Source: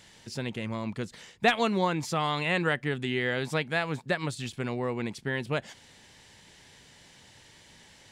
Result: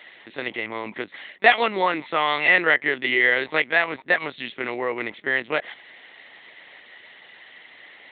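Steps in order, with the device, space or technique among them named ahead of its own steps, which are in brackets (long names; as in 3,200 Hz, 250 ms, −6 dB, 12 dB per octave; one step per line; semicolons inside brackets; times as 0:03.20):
talking toy (linear-prediction vocoder at 8 kHz pitch kept; high-pass filter 370 Hz 12 dB per octave; parametric band 2,000 Hz +10 dB 0.33 octaves)
level +7 dB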